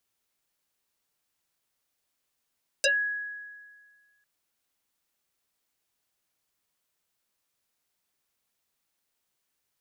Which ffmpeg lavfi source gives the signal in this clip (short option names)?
-f lavfi -i "aevalsrc='0.112*pow(10,-3*t/1.69)*sin(2*PI*1670*t+7.8*pow(10,-3*t/0.13)*sin(2*PI*0.66*1670*t))':d=1.4:s=44100"